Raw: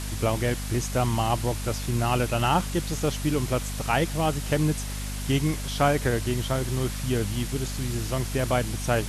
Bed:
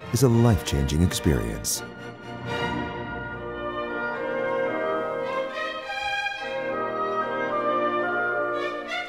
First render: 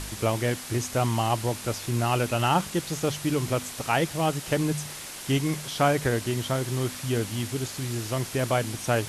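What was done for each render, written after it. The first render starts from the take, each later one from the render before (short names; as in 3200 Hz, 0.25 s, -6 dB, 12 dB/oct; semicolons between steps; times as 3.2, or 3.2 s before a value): de-hum 50 Hz, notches 5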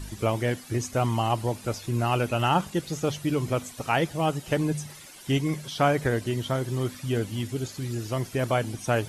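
denoiser 12 dB, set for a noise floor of -39 dBFS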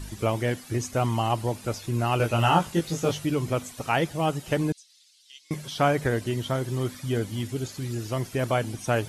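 2.18–3.26 doubler 18 ms -2 dB; 4.72–5.51 ladder band-pass 4800 Hz, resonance 45%; 6.92–7.42 notch 2700 Hz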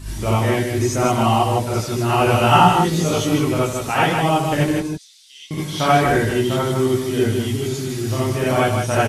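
echo 0.155 s -5.5 dB; non-linear reverb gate 0.11 s rising, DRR -7.5 dB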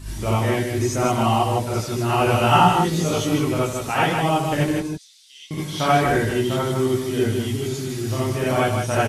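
gain -2.5 dB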